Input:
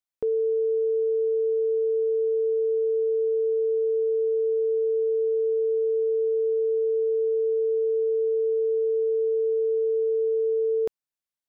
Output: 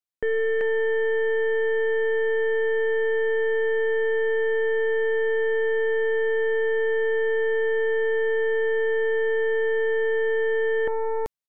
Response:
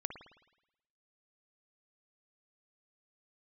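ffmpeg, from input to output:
-af "aecho=1:1:385:0.631,aeval=exprs='0.1*(cos(1*acos(clip(val(0)/0.1,-1,1)))-cos(1*PI/2))+0.0224*(cos(2*acos(clip(val(0)/0.1,-1,1)))-cos(2*PI/2))+0.0398*(cos(4*acos(clip(val(0)/0.1,-1,1)))-cos(4*PI/2))+0.00501*(cos(7*acos(clip(val(0)/0.1,-1,1)))-cos(7*PI/2))':channel_layout=same"

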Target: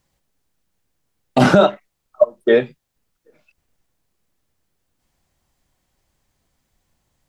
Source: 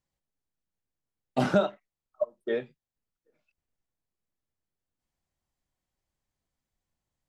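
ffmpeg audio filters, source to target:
ffmpeg -i in.wav -af "alimiter=level_in=17.5dB:limit=-1dB:release=50:level=0:latency=1,volume=-1dB" out.wav

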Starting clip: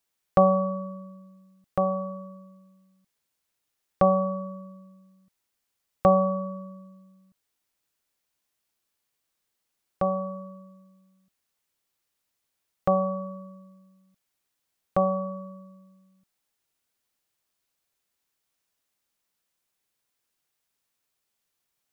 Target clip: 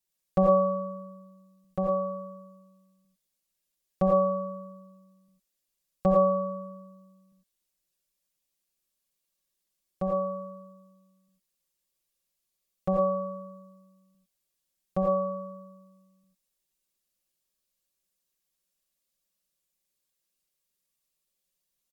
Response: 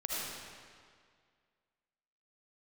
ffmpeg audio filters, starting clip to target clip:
-filter_complex "[0:a]equalizer=frequency=1200:width_type=o:width=2.6:gain=-9.5,aecho=1:1:5.4:0.88[link_01];[1:a]atrim=start_sample=2205,atrim=end_sample=4410,asetrate=38367,aresample=44100[link_02];[link_01][link_02]afir=irnorm=-1:irlink=0,volume=-3.5dB"

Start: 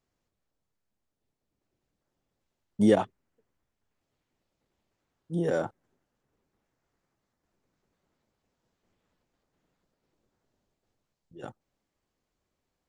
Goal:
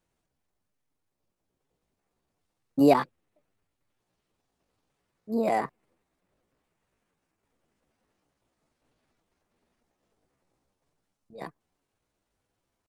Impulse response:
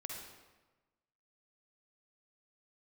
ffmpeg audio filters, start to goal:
-af "asetrate=58866,aresample=44100,atempo=0.749154,volume=2dB"

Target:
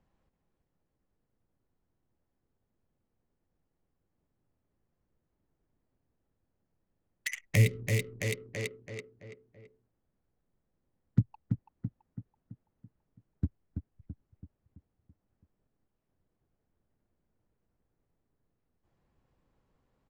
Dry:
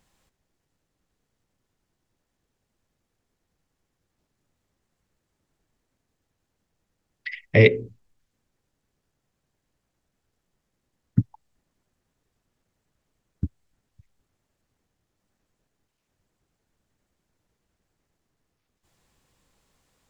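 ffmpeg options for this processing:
ffmpeg -i in.wav -filter_complex "[0:a]bandreject=frequency=3600:width=28,aecho=1:1:332|664|996|1328|1660|1992:0.447|0.223|0.112|0.0558|0.0279|0.014,adynamicsmooth=sensitivity=5.5:basefreq=910,crystalizer=i=6:c=0,acrossover=split=180[link_01][link_02];[link_02]acompressor=threshold=-27dB:ratio=10[link_03];[link_01][link_03]amix=inputs=2:normalize=0,volume=-3.5dB" out.wav

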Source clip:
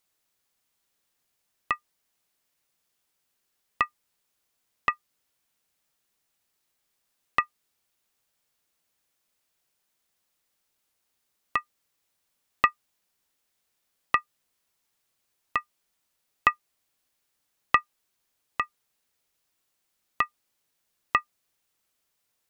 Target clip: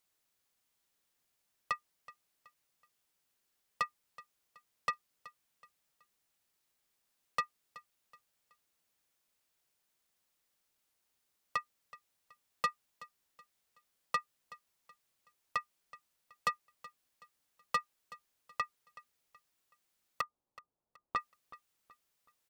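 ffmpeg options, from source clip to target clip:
ffmpeg -i in.wav -filter_complex "[0:a]asettb=1/sr,asplit=3[link_01][link_02][link_03];[link_01]atrim=end=20.214[link_04];[link_02]atrim=start=20.21:end=21.16,asetpts=PTS-STARTPTS,afade=type=in:duration=0.004:curve=qsin,afade=type=out:start_time=0.946:duration=0.004:curve=qsin,lowpass=frequency=1000:width=0.5412,lowpass=frequency=1000:width=1.3066[link_05];[link_03]atrim=start=21.156[link_06];[link_04][link_05]acrossfade=duration=0.004:curve1=hsin:curve2=qsin[link_07];[link_07][link_06]acrossfade=duration=0.004:curve1=qsin:curve2=hsin,asoftclip=type=tanh:threshold=-21dB,aecho=1:1:375|750|1125:0.112|0.0404|0.0145,volume=-3.5dB" out.wav

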